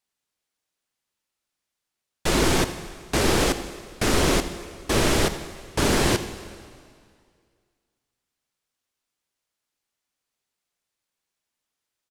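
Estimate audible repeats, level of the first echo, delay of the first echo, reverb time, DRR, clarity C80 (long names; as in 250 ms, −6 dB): 1, −16.5 dB, 82 ms, 2.1 s, 10.0 dB, 11.5 dB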